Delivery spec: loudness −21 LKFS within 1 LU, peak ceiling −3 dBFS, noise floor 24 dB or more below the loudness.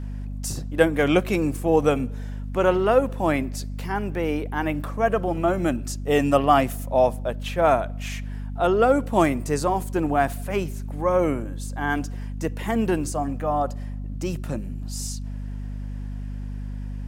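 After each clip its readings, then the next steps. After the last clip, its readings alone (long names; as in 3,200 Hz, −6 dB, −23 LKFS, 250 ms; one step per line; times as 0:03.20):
mains hum 50 Hz; hum harmonics up to 250 Hz; level of the hum −29 dBFS; integrated loudness −24.0 LKFS; sample peak −3.0 dBFS; target loudness −21.0 LKFS
→ hum removal 50 Hz, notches 5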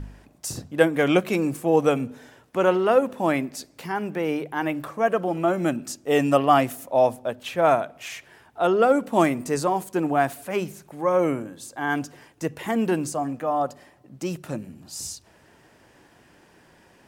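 mains hum none found; integrated loudness −24.0 LKFS; sample peak −3.0 dBFS; target loudness −21.0 LKFS
→ level +3 dB
brickwall limiter −3 dBFS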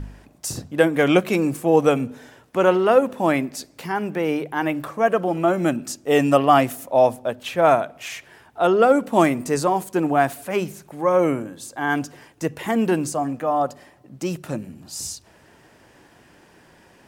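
integrated loudness −21.0 LKFS; sample peak −3.0 dBFS; background noise floor −53 dBFS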